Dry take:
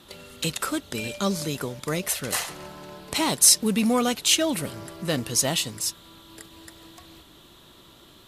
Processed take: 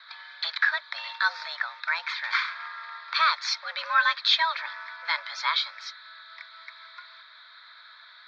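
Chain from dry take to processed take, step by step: mistuned SSB +330 Hz 490–3500 Hz; fixed phaser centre 2900 Hz, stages 6; gain +9 dB

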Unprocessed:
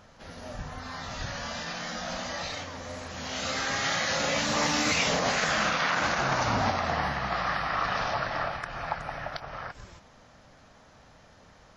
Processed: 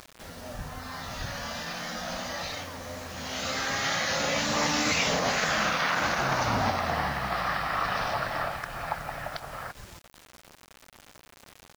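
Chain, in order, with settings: requantised 8-bit, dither none; upward compressor, threshold -41 dBFS

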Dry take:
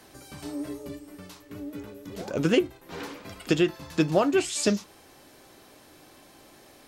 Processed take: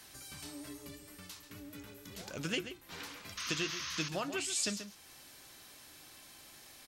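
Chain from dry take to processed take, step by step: passive tone stack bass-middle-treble 5-5-5; outdoor echo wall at 23 m, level -11 dB; painted sound noise, 3.37–4.09, 970–6700 Hz -44 dBFS; in parallel at +2.5 dB: compressor, threshold -55 dBFS, peak gain reduction 20.5 dB; on the sum: gain +1 dB

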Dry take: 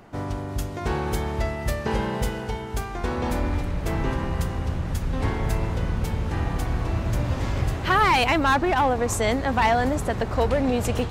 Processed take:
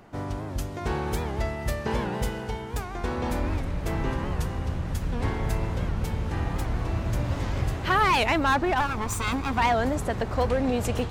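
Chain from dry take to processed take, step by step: 8.8–9.58 minimum comb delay 0.84 ms; record warp 78 rpm, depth 160 cents; gain -2.5 dB

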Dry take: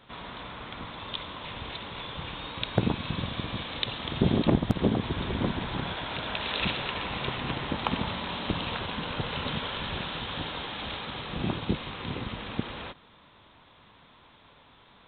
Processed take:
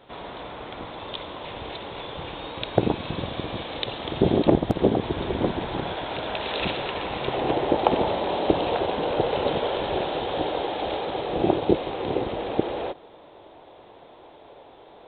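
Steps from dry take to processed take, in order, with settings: band shelf 510 Hz +8.5 dB, from 7.32 s +15.5 dB

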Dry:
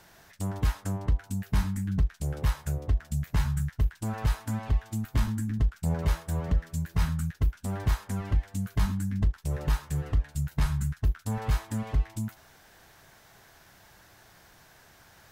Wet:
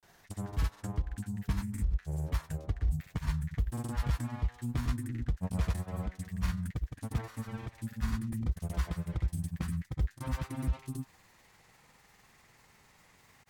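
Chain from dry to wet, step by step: speed glide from 103% -> 124%; grains, pitch spread up and down by 0 st; gain -4.5 dB

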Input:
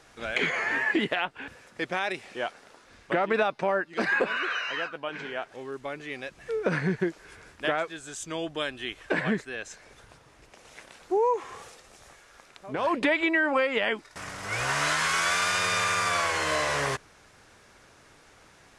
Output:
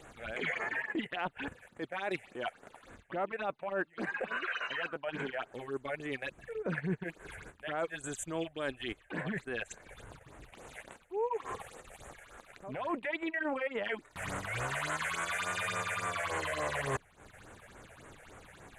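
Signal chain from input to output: rattling part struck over -40 dBFS, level -37 dBFS; bell 5300 Hz -14.5 dB 0.35 oct; reverse; compressor 8:1, threshold -34 dBFS, peak gain reduction 14 dB; reverse; phaser stages 6, 3.5 Hz, lowest notch 270–5000 Hz; transient shaper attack -6 dB, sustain -10 dB; gain +5.5 dB

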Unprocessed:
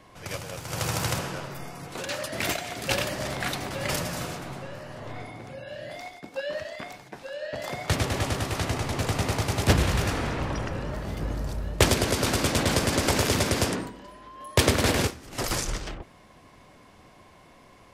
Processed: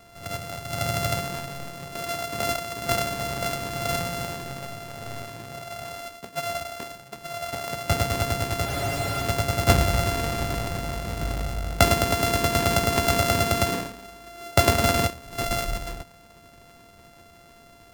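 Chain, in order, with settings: sample sorter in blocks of 64 samples; spectral freeze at 8.69, 0.53 s; gain +2 dB

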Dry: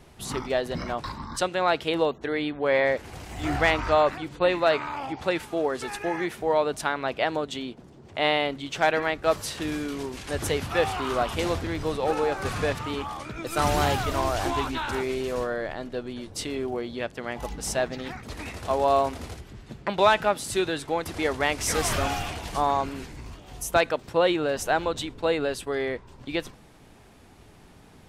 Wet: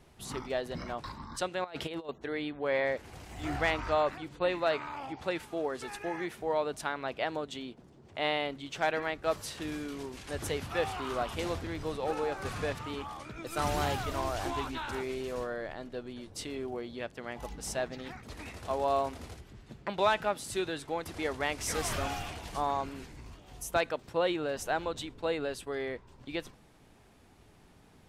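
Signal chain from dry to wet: 1.64–2.09 negative-ratio compressor -30 dBFS, ratio -0.5; gain -7.5 dB

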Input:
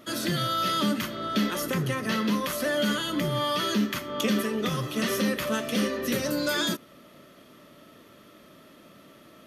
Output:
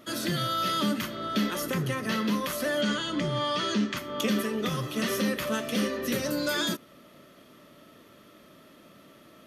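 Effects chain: 2.81–3.97 LPF 7900 Hz 24 dB/oct; gain -1.5 dB

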